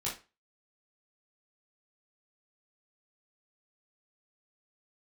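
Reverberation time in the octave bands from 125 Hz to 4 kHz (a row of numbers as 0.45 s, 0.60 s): 0.30 s, 0.30 s, 0.30 s, 0.30 s, 0.30 s, 0.25 s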